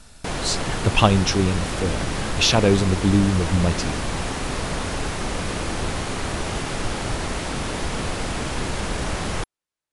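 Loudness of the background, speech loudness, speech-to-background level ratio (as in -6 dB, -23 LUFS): -27.0 LUFS, -21.0 LUFS, 6.0 dB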